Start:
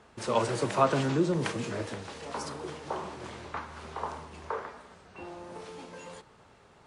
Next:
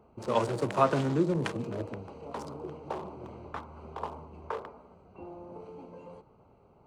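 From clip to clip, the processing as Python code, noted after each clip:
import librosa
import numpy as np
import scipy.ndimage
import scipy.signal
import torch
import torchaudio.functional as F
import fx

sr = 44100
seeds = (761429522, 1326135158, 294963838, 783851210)

y = fx.wiener(x, sr, points=25)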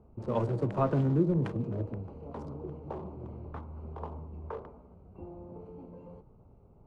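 y = fx.tilt_eq(x, sr, slope=-4.0)
y = y * librosa.db_to_amplitude(-7.0)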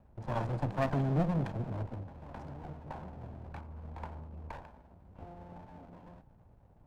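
y = fx.lower_of_two(x, sr, delay_ms=1.2)
y = y * librosa.db_to_amplitude(-2.0)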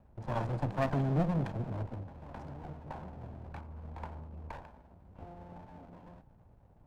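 y = x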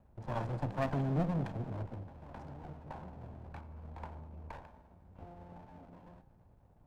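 y = fx.comb_fb(x, sr, f0_hz=89.0, decay_s=1.9, harmonics='all', damping=0.0, mix_pct=50)
y = y * librosa.db_to_amplitude(3.0)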